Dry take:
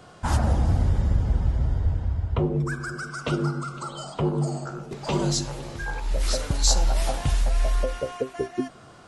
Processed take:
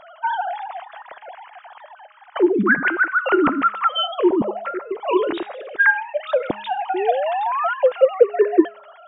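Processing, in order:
three sine waves on the formant tracks
hum removal 207.8 Hz, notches 37
sound drawn into the spectrogram rise, 0:06.94–0:07.74, 350–1,500 Hz −25 dBFS
level +3 dB

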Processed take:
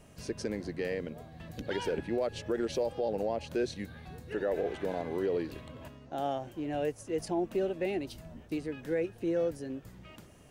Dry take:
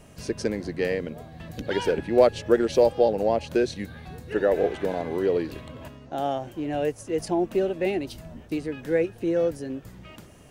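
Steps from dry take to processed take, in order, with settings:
brickwall limiter −16.5 dBFS, peak gain reduction 11 dB
level −6 dB

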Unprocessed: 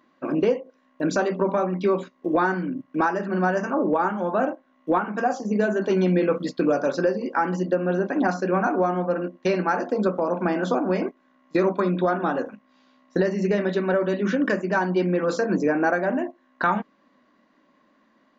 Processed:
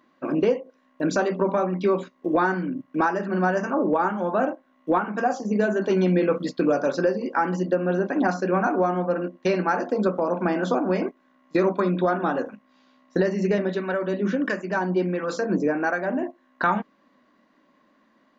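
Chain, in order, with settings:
0:13.58–0:16.23: two-band tremolo in antiphase 1.5 Hz, depth 50%, crossover 870 Hz

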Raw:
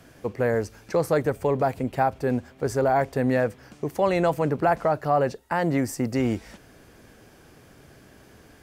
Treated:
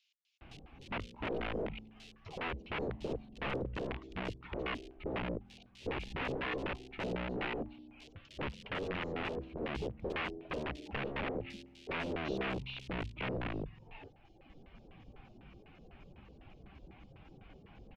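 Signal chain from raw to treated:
reverb reduction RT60 0.81 s
low-shelf EQ 76 Hz +9 dB
downward compressor 2.5 to 1, threshold −32 dBFS, peak gain reduction 10 dB
change of speed 0.48×
spring reverb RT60 1.7 s, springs 46 ms, chirp 75 ms, DRR 17 dB
wrap-around overflow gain 29.5 dB
auto-filter low-pass square 4 Hz 470–2,700 Hz
multiband delay without the direct sound highs, lows 410 ms, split 4,000 Hz
level −4 dB

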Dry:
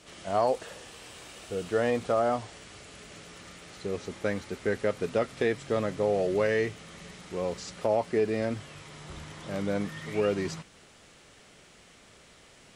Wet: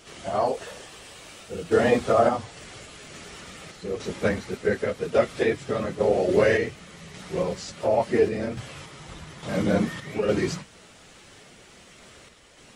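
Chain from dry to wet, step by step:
random phases in long frames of 50 ms
sample-and-hold tremolo
level +7 dB

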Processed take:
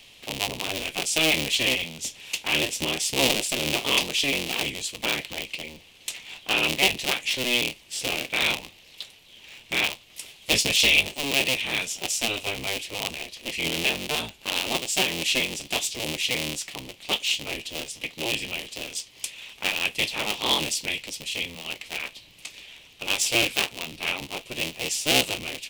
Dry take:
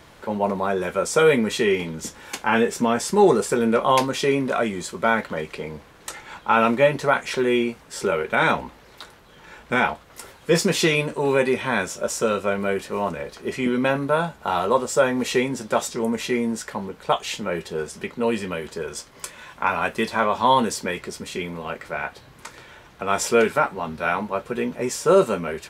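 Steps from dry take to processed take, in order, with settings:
sub-harmonics by changed cycles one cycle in 3, inverted
high shelf with overshoot 2,000 Hz +11 dB, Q 3
level −10 dB

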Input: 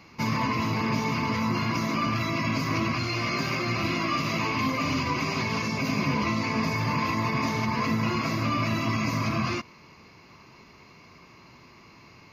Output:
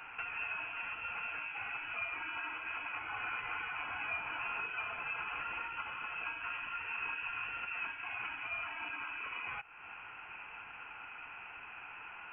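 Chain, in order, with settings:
downward compressor 4 to 1, threshold −43 dBFS, peak gain reduction 17.5 dB
high-pass filter 810 Hz 24 dB per octave
voice inversion scrambler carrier 3,600 Hz
level +6.5 dB

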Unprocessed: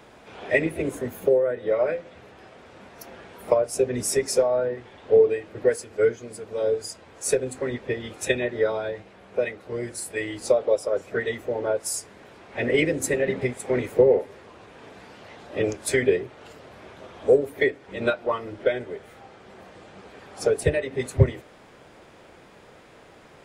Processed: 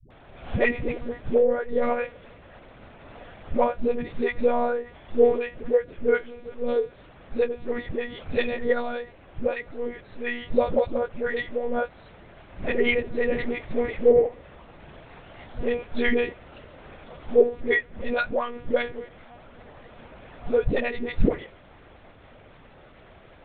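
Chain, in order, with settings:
one-pitch LPC vocoder at 8 kHz 240 Hz
all-pass dispersion highs, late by 106 ms, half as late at 330 Hz

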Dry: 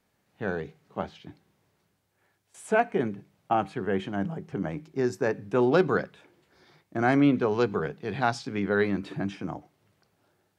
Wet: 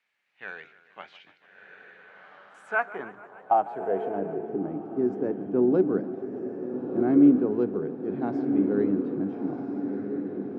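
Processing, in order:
feedback delay with all-pass diffusion 1,348 ms, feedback 53%, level −6.5 dB
band-pass filter sweep 2,300 Hz → 290 Hz, 0:02.06–0:04.80
feedback echo with a swinging delay time 147 ms, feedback 71%, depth 142 cents, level −18 dB
level +5 dB

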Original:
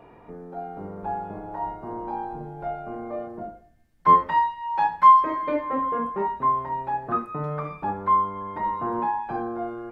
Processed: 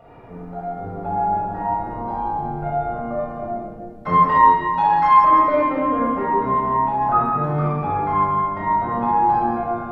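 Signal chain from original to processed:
rectangular room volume 3,900 cubic metres, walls mixed, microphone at 6.8 metres
level −2 dB

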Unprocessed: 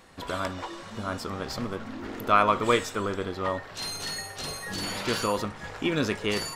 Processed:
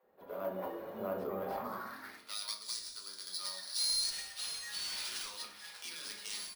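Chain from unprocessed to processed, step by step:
stylus tracing distortion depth 0.44 ms
0:01.64–0:04.10: high shelf with overshoot 3,600 Hz +7.5 dB, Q 3
automatic gain control gain up to 14 dB
brickwall limiter −11.5 dBFS, peak gain reduction 11 dB
band-pass filter sweep 490 Hz → 4,700 Hz, 0:01.34–0:02.57
bad sample-rate conversion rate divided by 3×, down none, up hold
multiband delay without the direct sound highs, lows 30 ms, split 410 Hz
convolution reverb RT60 0.45 s, pre-delay 5 ms, DRR 1.5 dB
level −9 dB

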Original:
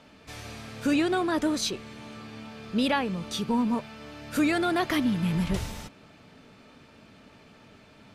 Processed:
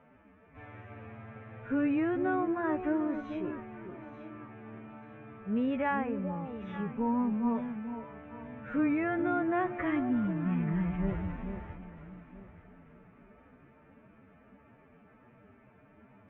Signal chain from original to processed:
inverse Chebyshev low-pass filter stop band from 4,200 Hz, stop band 40 dB
phase-vocoder stretch with locked phases 2×
delay that swaps between a low-pass and a high-pass 442 ms, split 830 Hz, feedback 53%, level −7.5 dB
level −5 dB

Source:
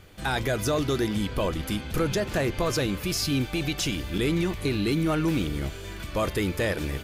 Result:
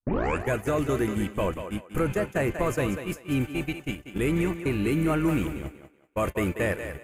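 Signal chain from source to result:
turntable start at the beginning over 0.50 s
flat-topped bell 4,400 Hz −14 dB 1 octave
noise gate −27 dBFS, range −50 dB
feedback echo with a high-pass in the loop 189 ms, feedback 29%, high-pass 300 Hz, level −8 dB
one half of a high-frequency compander decoder only

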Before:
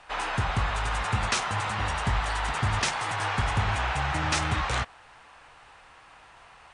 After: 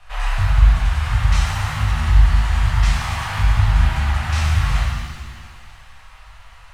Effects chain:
variable-slope delta modulation 64 kbit/s
spectral tilt −3.5 dB per octave
in parallel at −1 dB: downward compressor, threshold −24 dBFS, peak gain reduction 14 dB
on the sum: guitar amp tone stack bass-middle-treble 10-0-10
on a send: feedback echo with a high-pass in the loop 271 ms, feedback 64%, level −15 dB
on the sum: chorus effect 1.7 Hz, delay 17 ms, depth 7.7 ms
reverb with rising layers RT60 1.2 s, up +7 semitones, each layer −8 dB, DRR −3.5 dB
level +4.5 dB

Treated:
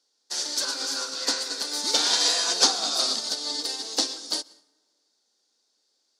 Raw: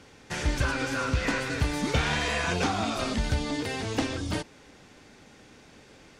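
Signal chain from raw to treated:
Bessel high-pass filter 430 Hz, order 8
high shelf with overshoot 3,300 Hz +11 dB, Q 3
dense smooth reverb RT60 1.7 s, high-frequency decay 0.55×, pre-delay 105 ms, DRR 7 dB
expander for the loud parts 2.5 to 1, over −40 dBFS
level +5 dB

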